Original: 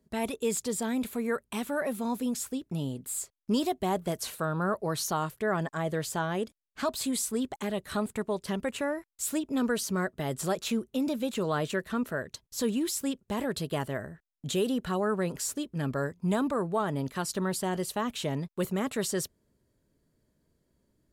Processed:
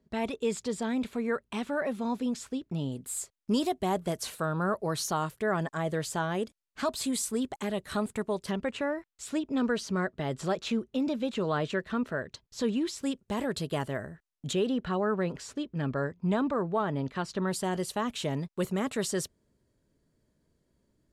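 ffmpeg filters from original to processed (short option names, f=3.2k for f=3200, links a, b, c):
-af "asetnsamples=n=441:p=0,asendcmd='2.92 lowpass f 11000;8.51 lowpass f 4900;13.03 lowpass f 9900;14.53 lowpass f 3900;17.48 lowpass f 10000',lowpass=5.2k"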